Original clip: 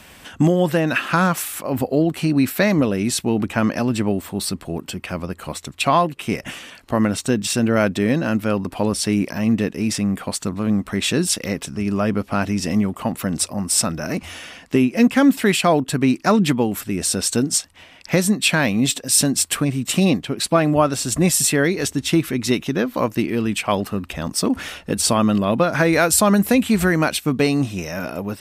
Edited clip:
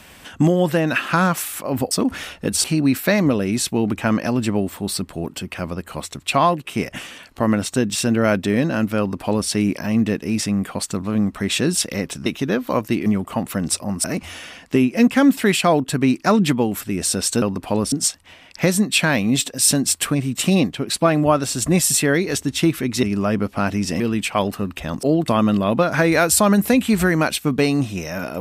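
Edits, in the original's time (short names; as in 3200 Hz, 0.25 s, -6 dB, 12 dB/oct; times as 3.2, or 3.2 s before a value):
1.91–2.16 swap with 24.36–25.09
8.51–9.01 copy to 17.42
11.78–12.75 swap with 22.53–23.33
13.73–14.04 cut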